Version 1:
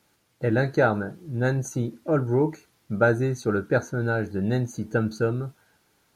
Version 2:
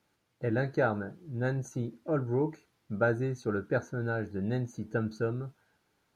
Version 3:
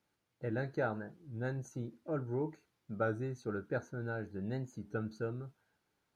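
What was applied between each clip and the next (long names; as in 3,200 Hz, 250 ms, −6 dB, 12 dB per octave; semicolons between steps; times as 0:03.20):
high-shelf EQ 5,700 Hz −8.5 dB; level −7 dB
wow of a warped record 33 1/3 rpm, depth 100 cents; level −7 dB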